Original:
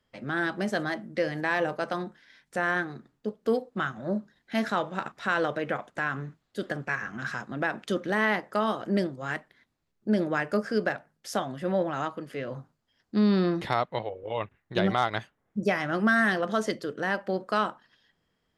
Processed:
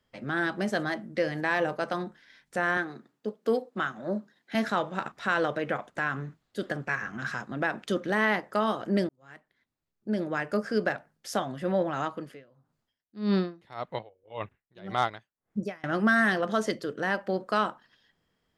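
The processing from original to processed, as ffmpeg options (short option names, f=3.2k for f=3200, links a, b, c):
-filter_complex "[0:a]asettb=1/sr,asplit=3[a][b][c];[a]atrim=end=2.774[d];[b]atrim=start=2.77:end=4.55,asetpts=PTS-STARTPTS,afade=t=in:d=0.004:c=qsin,afade=t=out:st=1.776:d=0.004:c=qsin,highpass=200[e];[c]atrim=start=4.546[f];[d][e]acrossfade=d=0.004:c1=hsin:c2=qsin[g];[g][f]acrossfade=d=0.004:c1=qsin:c2=hsin,asettb=1/sr,asplit=3[h][i][j];[h]atrim=end=12.244[k];[i]atrim=start=12.24:end=15.84,asetpts=PTS-STARTPTS,afade=t=in:d=0.004:c=qsin,afade=t=out:st=3.596:d=0.004:c=qsin,aeval=exprs='val(0)*pow(10,-27*(0.5-0.5*cos(2*PI*1.8*n/s))/20)':c=same[l];[j]atrim=start=15.836[m];[k][l]acrossfade=d=0.004:c1=hsin:c2=qsin[n];[n][m]acrossfade=d=0.004:c1=qsin:c2=hsin,asplit=2[o][p];[o]atrim=end=9.09,asetpts=PTS-STARTPTS,afade=t=out:st=9.086:d=0.004:c=hsin[q];[p]atrim=start=9.09,asetpts=PTS-STARTPTS,afade=t=in:d=1.74[r];[q][r]concat=n=2:v=0:a=1"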